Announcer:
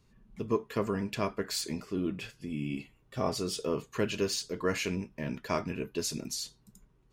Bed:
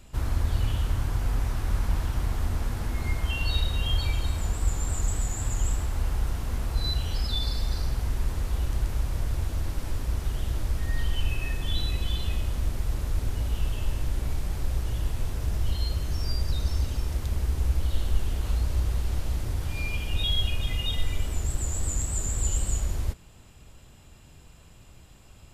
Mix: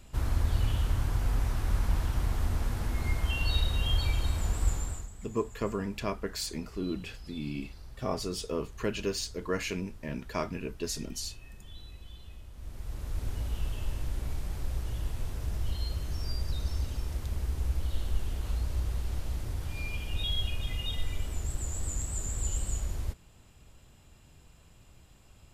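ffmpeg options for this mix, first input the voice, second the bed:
ffmpeg -i stem1.wav -i stem2.wav -filter_complex "[0:a]adelay=4850,volume=-1.5dB[link_01];[1:a]volume=12dB,afade=type=out:start_time=4.69:duration=0.4:silence=0.133352,afade=type=in:start_time=12.54:duration=0.75:silence=0.199526[link_02];[link_01][link_02]amix=inputs=2:normalize=0" out.wav

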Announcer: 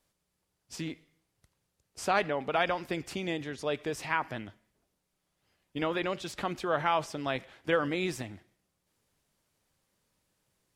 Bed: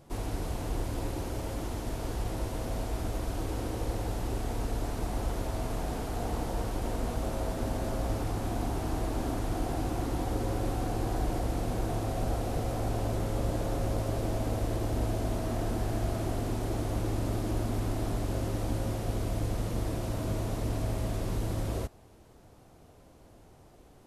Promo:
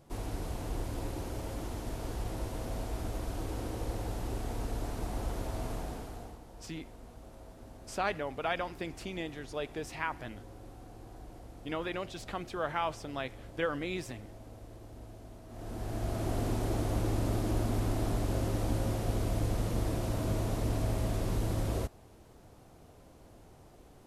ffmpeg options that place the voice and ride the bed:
ffmpeg -i stem1.wav -i stem2.wav -filter_complex "[0:a]adelay=5900,volume=-5dB[link_01];[1:a]volume=15dB,afade=type=out:start_time=5.69:duration=0.7:silence=0.177828,afade=type=in:start_time=15.48:duration=0.94:silence=0.11885[link_02];[link_01][link_02]amix=inputs=2:normalize=0" out.wav

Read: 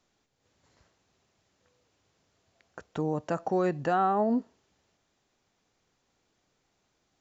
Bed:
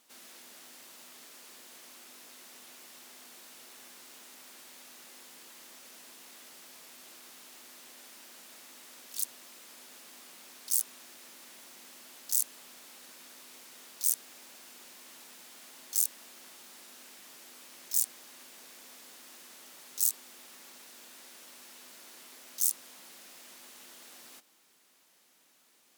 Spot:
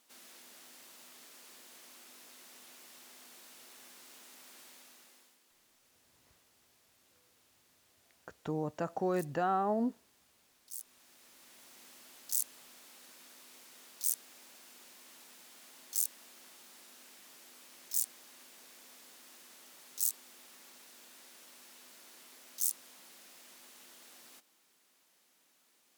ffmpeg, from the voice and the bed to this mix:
ffmpeg -i stem1.wav -i stem2.wav -filter_complex "[0:a]adelay=5500,volume=-5.5dB[link_01];[1:a]volume=9.5dB,afade=type=out:start_time=4.65:duration=0.74:silence=0.199526,afade=type=in:start_time=10.71:duration=1.11:silence=0.223872[link_02];[link_01][link_02]amix=inputs=2:normalize=0" out.wav

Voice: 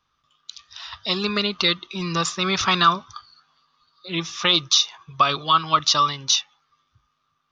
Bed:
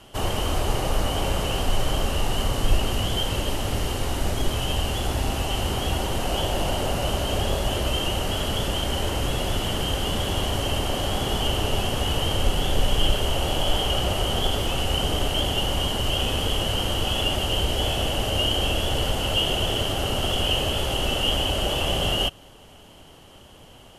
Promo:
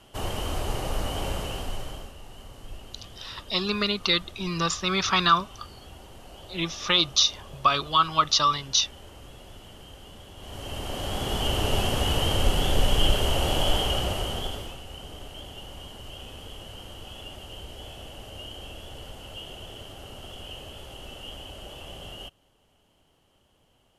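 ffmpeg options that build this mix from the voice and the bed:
ffmpeg -i stem1.wav -i stem2.wav -filter_complex "[0:a]adelay=2450,volume=-3dB[link_01];[1:a]volume=15dB,afade=type=out:start_time=1.3:duration=0.84:silence=0.16788,afade=type=in:start_time=10.37:duration=1.39:silence=0.0944061,afade=type=out:start_time=13.65:duration=1.15:silence=0.141254[link_02];[link_01][link_02]amix=inputs=2:normalize=0" out.wav

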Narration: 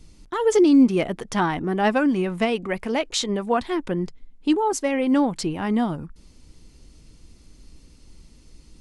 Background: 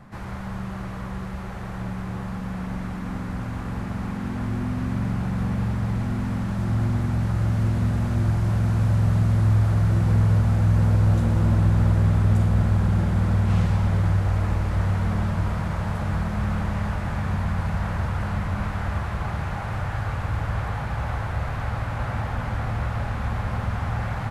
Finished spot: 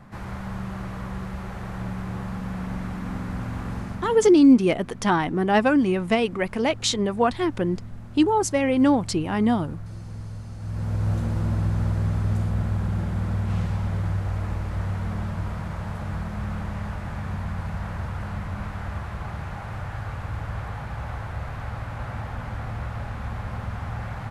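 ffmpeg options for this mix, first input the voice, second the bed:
ffmpeg -i stem1.wav -i stem2.wav -filter_complex "[0:a]adelay=3700,volume=1dB[link_01];[1:a]volume=12dB,afade=type=out:start_time=3.65:duration=0.79:silence=0.141254,afade=type=in:start_time=10.57:duration=0.53:silence=0.237137[link_02];[link_01][link_02]amix=inputs=2:normalize=0" out.wav

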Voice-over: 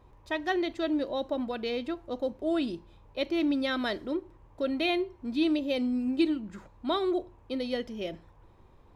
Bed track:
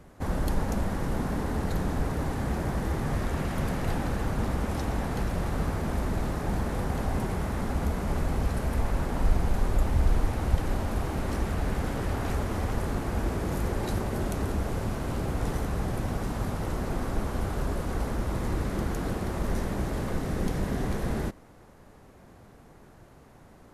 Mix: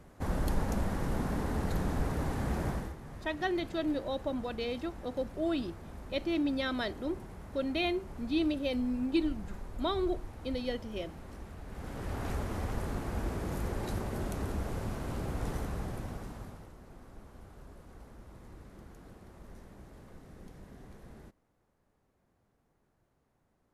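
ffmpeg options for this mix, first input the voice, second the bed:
ffmpeg -i stem1.wav -i stem2.wav -filter_complex "[0:a]adelay=2950,volume=-3.5dB[link_01];[1:a]volume=8dB,afade=type=out:start_time=2.68:duration=0.27:silence=0.199526,afade=type=in:start_time=11.67:duration=0.58:silence=0.266073,afade=type=out:start_time=15.6:duration=1.12:silence=0.158489[link_02];[link_01][link_02]amix=inputs=2:normalize=0" out.wav

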